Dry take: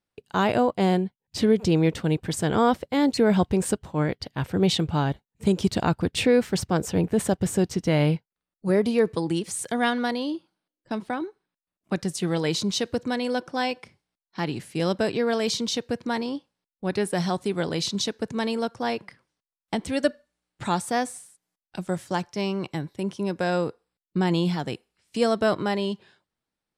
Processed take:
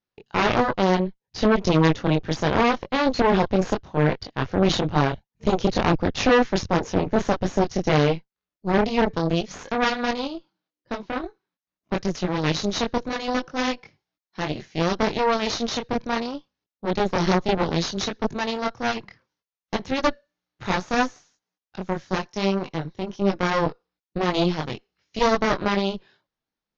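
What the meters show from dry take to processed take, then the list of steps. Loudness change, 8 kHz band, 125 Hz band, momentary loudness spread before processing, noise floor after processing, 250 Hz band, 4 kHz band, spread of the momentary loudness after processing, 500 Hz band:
+2.0 dB, −3.5 dB, +1.0 dB, 10 LU, below −85 dBFS, +0.5 dB, +2.0 dB, 11 LU, +1.5 dB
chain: multi-voice chorus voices 4, 0.65 Hz, delay 23 ms, depth 4.1 ms
harmonic generator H 8 −11 dB, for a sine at −8 dBFS
Chebyshev low-pass filter 6,700 Hz, order 8
level +2 dB

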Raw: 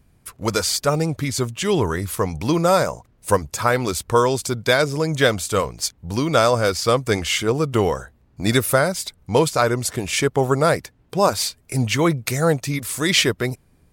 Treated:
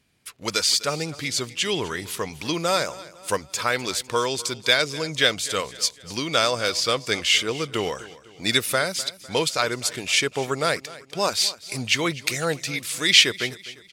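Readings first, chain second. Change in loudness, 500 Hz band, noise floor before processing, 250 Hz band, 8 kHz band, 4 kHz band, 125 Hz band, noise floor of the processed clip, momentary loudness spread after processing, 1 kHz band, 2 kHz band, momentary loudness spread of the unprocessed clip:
−2.5 dB, −7.5 dB, −58 dBFS, −8.5 dB, −0.5 dB, +4.0 dB, −12.0 dB, −50 dBFS, 10 LU, −6.0 dB, 0.0 dB, 8 LU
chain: meter weighting curve D
on a send: repeating echo 252 ms, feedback 47%, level −18.5 dB
on the sum: level −7 dB

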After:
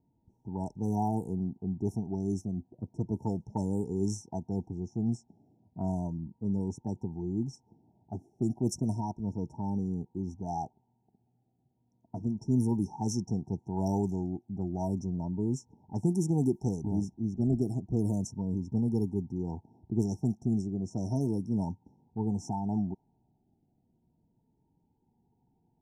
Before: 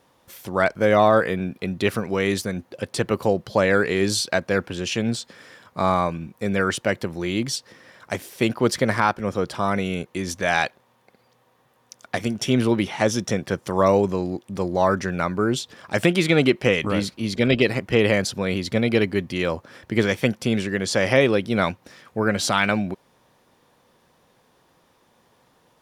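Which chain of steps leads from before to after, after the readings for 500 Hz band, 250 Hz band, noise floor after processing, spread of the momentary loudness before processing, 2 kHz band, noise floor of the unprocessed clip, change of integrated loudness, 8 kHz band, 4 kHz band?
−17.0 dB, −6.5 dB, −74 dBFS, 10 LU, below −40 dB, −62 dBFS, −10.5 dB, −14.5 dB, −26.5 dB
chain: linear-phase brick-wall band-stop 950–5,300 Hz
low-pass that shuts in the quiet parts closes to 650 Hz, open at −14.5 dBFS
phaser with its sweep stopped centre 1,300 Hz, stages 4
phaser whose notches keep moving one way falling 0.33 Hz
level −3.5 dB

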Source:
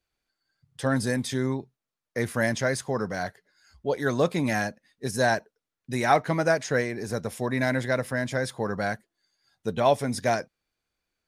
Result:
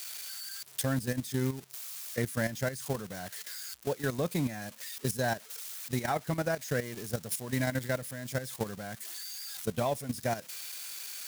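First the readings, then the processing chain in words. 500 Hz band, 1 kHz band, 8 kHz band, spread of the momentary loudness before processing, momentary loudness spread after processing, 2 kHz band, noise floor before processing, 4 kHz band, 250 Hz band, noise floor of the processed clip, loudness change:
−8.5 dB, −10.0 dB, +0.5 dB, 10 LU, 8 LU, −9.0 dB, below −85 dBFS, −3.0 dB, −6.0 dB, −53 dBFS, −7.5 dB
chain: spike at every zero crossing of −19.5 dBFS
dynamic equaliser 140 Hz, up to +6 dB, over −41 dBFS, Q 0.78
transient designer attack +6 dB, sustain −6 dB
output level in coarse steps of 11 dB
high-shelf EQ 8,300 Hz −3.5 dB
level −6.5 dB

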